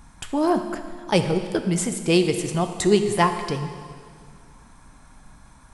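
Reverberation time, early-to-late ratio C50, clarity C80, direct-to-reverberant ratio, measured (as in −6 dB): 2.0 s, 8.5 dB, 9.5 dB, 7.0 dB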